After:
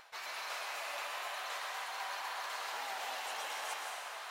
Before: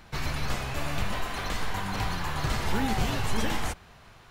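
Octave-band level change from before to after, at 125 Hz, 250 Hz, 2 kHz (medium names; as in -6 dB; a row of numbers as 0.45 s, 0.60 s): under -40 dB, under -30 dB, -6.0 dB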